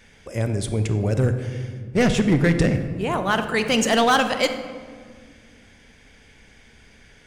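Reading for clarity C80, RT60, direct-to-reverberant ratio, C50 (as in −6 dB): 10.5 dB, 1.8 s, 8.0 dB, 9.0 dB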